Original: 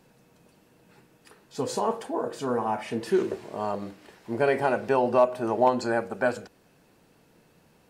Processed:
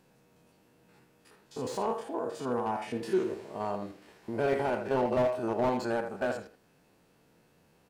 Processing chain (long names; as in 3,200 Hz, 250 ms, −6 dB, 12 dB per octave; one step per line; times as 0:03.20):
spectrum averaged block by block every 50 ms
far-end echo of a speakerphone 80 ms, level −9 dB
slew-rate limiting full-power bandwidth 67 Hz
level −3.5 dB